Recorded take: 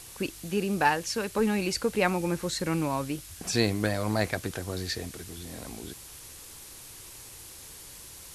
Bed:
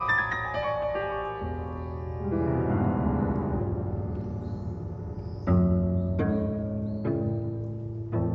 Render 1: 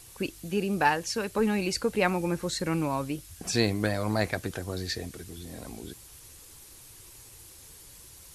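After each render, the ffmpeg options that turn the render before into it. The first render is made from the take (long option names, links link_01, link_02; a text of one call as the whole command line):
ffmpeg -i in.wav -af "afftdn=noise_reduction=6:noise_floor=-47" out.wav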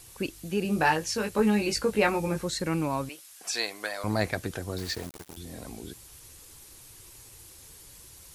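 ffmpeg -i in.wav -filter_complex "[0:a]asettb=1/sr,asplit=3[link_01][link_02][link_03];[link_01]atrim=end=0.634[link_04];[link_02]atrim=start=0.63:end=2.43,asetpts=PTS-STARTPTS,afade=type=in:duration=0.004:curve=qsin,afade=type=out:start_time=1.796:duration=0.004:curve=qsin,asplit=2[link_05][link_06];[link_06]adelay=19,volume=-4dB[link_07];[link_05][link_07]amix=inputs=2:normalize=0,atrim=end_sample=79380[link_08];[link_03]atrim=start=2.426[link_09];[link_04][link_08]acrossfade=duration=0.004:curve1=hsin:curve2=qsin[link_10];[link_10][link_09]acrossfade=duration=0.004:curve1=qsin:curve2=hsin,asettb=1/sr,asplit=3[link_11][link_12][link_13];[link_11]atrim=end=3.094[link_14];[link_12]atrim=start=3.09:end=4.04,asetpts=PTS-STARTPTS,afade=type=in:duration=0.004:curve=qsin,afade=type=out:start_time=0.946:duration=0.004:curve=qsin,highpass=750[link_15];[link_13]atrim=start=4.036[link_16];[link_14][link_15]acrossfade=duration=0.004:curve1=hsin:curve2=qsin[link_17];[link_17][link_16]acrossfade=duration=0.004:curve1=qsin:curve2=hsin,asettb=1/sr,asplit=3[link_18][link_19][link_20];[link_18]atrim=end=4.784[link_21];[link_19]atrim=start=4.78:end=5.37,asetpts=PTS-STARTPTS,afade=type=in:duration=0.004:curve=qsin,afade=type=out:start_time=0.586:duration=0.004:curve=qsin,aeval=exprs='val(0)*gte(abs(val(0)),0.0133)':channel_layout=same[link_22];[link_20]atrim=start=5.366[link_23];[link_21][link_22]acrossfade=duration=0.004:curve1=hsin:curve2=qsin[link_24];[link_24][link_23]acrossfade=duration=0.004:curve1=qsin:curve2=hsin" out.wav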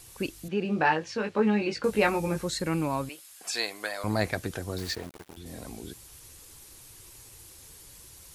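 ffmpeg -i in.wav -filter_complex "[0:a]asettb=1/sr,asplit=3[link_01][link_02][link_03];[link_01]atrim=end=0.484[link_04];[link_02]atrim=start=0.48:end=1.84,asetpts=PTS-STARTPTS,afade=type=in:duration=0.004:curve=qsin,afade=type=out:start_time=1.356:duration=0.004:curve=qsin,highpass=150,lowpass=3300[link_05];[link_03]atrim=start=1.836[link_06];[link_04][link_05]acrossfade=duration=0.004:curve1=hsin:curve2=qsin[link_07];[link_07][link_06]acrossfade=duration=0.004:curve1=qsin:curve2=hsin,asettb=1/sr,asplit=3[link_08][link_09][link_10];[link_08]atrim=end=2.534[link_11];[link_09]atrim=start=2.53:end=4.26,asetpts=PTS-STARTPTS,afade=type=in:duration=0.004:curve=qsin,afade=type=out:start_time=1.726:duration=0.004:curve=qsin,bandreject=frequency=5800:width=12[link_12];[link_10]atrim=start=4.256[link_13];[link_11][link_12]acrossfade=duration=0.004:curve1=hsin:curve2=qsin[link_14];[link_14][link_13]acrossfade=duration=0.004:curve1=qsin:curve2=hsin,asettb=1/sr,asplit=3[link_15][link_16][link_17];[link_15]atrim=end=4.954[link_18];[link_16]atrim=start=4.95:end=5.46,asetpts=PTS-STARTPTS,afade=type=in:duration=0.004:curve=qsin,afade=type=out:start_time=0.506:duration=0.004:curve=qsin,bass=frequency=250:gain=-3,treble=frequency=4000:gain=-8[link_19];[link_17]atrim=start=5.456[link_20];[link_18][link_19]acrossfade=duration=0.004:curve1=hsin:curve2=qsin[link_21];[link_21][link_20]acrossfade=duration=0.004:curve1=qsin:curve2=hsin" out.wav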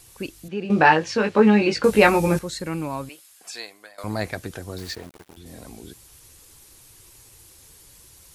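ffmpeg -i in.wav -filter_complex "[0:a]asplit=4[link_01][link_02][link_03][link_04];[link_01]atrim=end=0.702[link_05];[link_02]atrim=start=0.698:end=2.392,asetpts=PTS-STARTPTS,volume=9dB[link_06];[link_03]atrim=start=2.388:end=3.98,asetpts=PTS-STARTPTS,afade=type=out:start_time=0.772:duration=0.82:silence=0.125893[link_07];[link_04]atrim=start=3.98,asetpts=PTS-STARTPTS,afade=type=in:duration=0.004:curve=hsin:silence=0.125893[link_08];[link_05][link_06]acrossfade=duration=0.004:curve1=hsin:curve2=hsin[link_09];[link_07][link_08]concat=n=2:v=0:a=1[link_10];[link_09][link_10]acrossfade=duration=0.004:curve1=hsin:curve2=hsin" out.wav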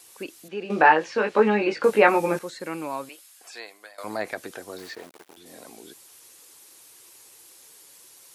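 ffmpeg -i in.wav -filter_complex "[0:a]acrossover=split=2600[link_01][link_02];[link_02]acompressor=threshold=-42dB:ratio=4:attack=1:release=60[link_03];[link_01][link_03]amix=inputs=2:normalize=0,highpass=350" out.wav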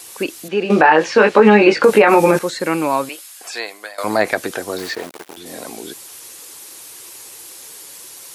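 ffmpeg -i in.wav -af "alimiter=level_in=13.5dB:limit=-1dB:release=50:level=0:latency=1" out.wav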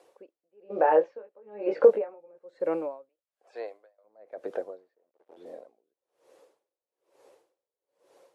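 ffmpeg -i in.wav -af "bandpass=frequency=540:width_type=q:width=3.9:csg=0,aeval=exprs='val(0)*pow(10,-38*(0.5-0.5*cos(2*PI*1.1*n/s))/20)':channel_layout=same" out.wav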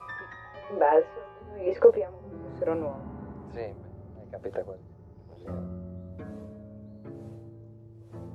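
ffmpeg -i in.wav -i bed.wav -filter_complex "[1:a]volume=-15dB[link_01];[0:a][link_01]amix=inputs=2:normalize=0" out.wav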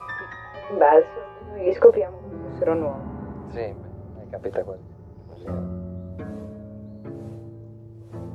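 ffmpeg -i in.wav -af "volume=6.5dB,alimiter=limit=-2dB:level=0:latency=1" out.wav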